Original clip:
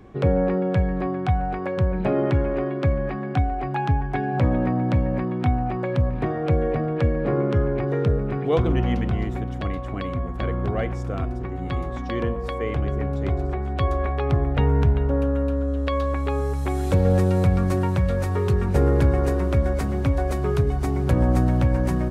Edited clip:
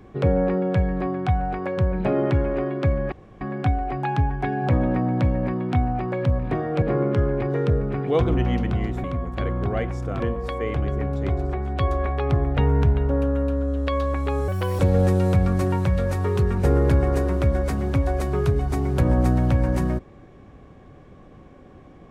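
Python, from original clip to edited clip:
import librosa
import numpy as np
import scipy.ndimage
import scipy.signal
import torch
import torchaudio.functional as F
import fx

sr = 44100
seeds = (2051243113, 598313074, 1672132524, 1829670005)

y = fx.edit(x, sr, fx.insert_room_tone(at_s=3.12, length_s=0.29),
    fx.cut(start_s=6.53, length_s=0.67),
    fx.cut(start_s=9.42, length_s=0.64),
    fx.cut(start_s=11.22, length_s=0.98),
    fx.speed_span(start_s=16.48, length_s=0.42, speed=1.35), tone=tone)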